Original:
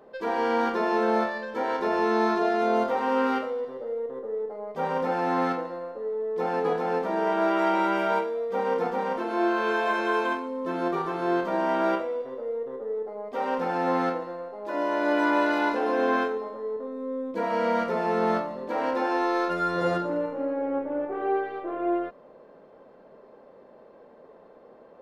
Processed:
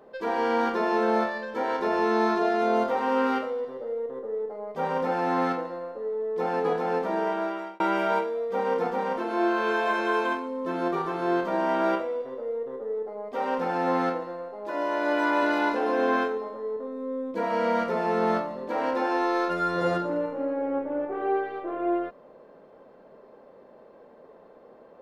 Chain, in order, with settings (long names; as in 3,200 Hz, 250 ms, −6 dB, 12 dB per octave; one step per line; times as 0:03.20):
0:07.14–0:07.80: fade out
0:14.70–0:15.43: high-pass filter 290 Hz 6 dB per octave